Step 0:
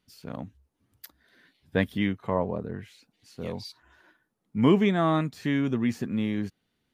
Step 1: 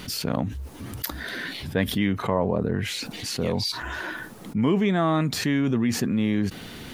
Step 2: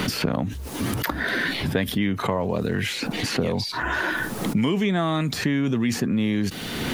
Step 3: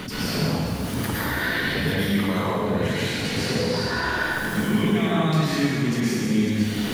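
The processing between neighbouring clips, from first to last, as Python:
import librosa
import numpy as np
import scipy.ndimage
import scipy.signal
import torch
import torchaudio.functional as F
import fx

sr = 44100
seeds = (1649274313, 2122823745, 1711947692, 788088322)

y1 = fx.env_flatten(x, sr, amount_pct=70)
y1 = y1 * 10.0 ** (-3.0 / 20.0)
y2 = fx.band_squash(y1, sr, depth_pct=100)
y3 = fx.rev_plate(y2, sr, seeds[0], rt60_s=2.2, hf_ratio=0.95, predelay_ms=95, drr_db=-9.0)
y3 = y3 * 10.0 ** (-8.5 / 20.0)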